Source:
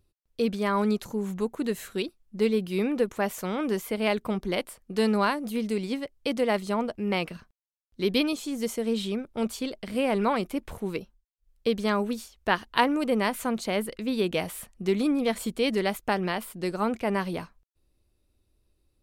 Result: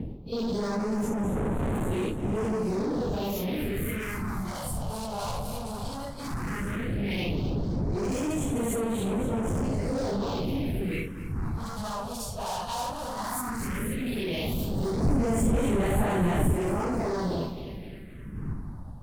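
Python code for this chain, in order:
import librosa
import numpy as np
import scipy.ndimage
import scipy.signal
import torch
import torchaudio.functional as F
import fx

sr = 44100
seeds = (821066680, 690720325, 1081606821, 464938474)

p1 = fx.phase_scramble(x, sr, seeds[0], window_ms=200)
p2 = fx.dmg_wind(p1, sr, seeds[1], corner_hz=220.0, level_db=-30.0)
p3 = np.clip(p2, -10.0 ** (-32.5 / 20.0), 10.0 ** (-32.5 / 20.0))
p4 = fx.over_compress(p3, sr, threshold_db=-37.0, ratio=-1.0)
p5 = p3 + (p4 * 10.0 ** (1.0 / 20.0))
p6 = fx.low_shelf(p5, sr, hz=200.0, db=9.5, at=(15.03, 16.53))
p7 = p6 + fx.echo_feedback(p6, sr, ms=261, feedback_pct=58, wet_db=-10.5, dry=0)
y = fx.phaser_stages(p7, sr, stages=4, low_hz=310.0, high_hz=4800.0, hz=0.14, feedback_pct=25)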